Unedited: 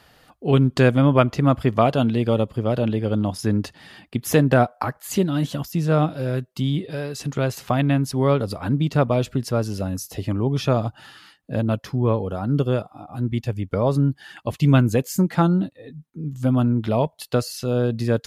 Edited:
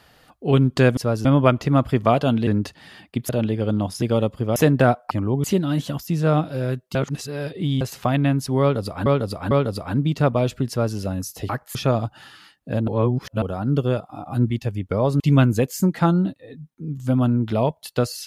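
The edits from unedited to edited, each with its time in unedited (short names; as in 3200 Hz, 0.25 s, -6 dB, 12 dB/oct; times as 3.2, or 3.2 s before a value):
2.19–2.73 swap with 3.46–4.28
4.83–5.09 swap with 10.24–10.57
6.6–7.46 reverse
8.26–8.71 loop, 3 plays
9.44–9.72 copy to 0.97
11.7–12.24 reverse
12.91–13.32 gain +5 dB
14.02–14.56 cut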